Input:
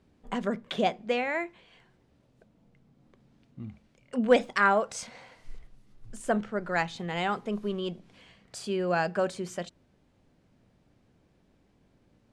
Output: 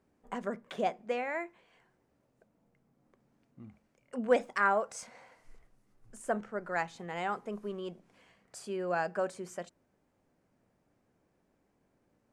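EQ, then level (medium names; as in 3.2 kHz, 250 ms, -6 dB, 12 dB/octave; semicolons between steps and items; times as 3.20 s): bass shelf 240 Hz -11.5 dB; peaking EQ 3.6 kHz -10.5 dB 1.2 oct; -2.5 dB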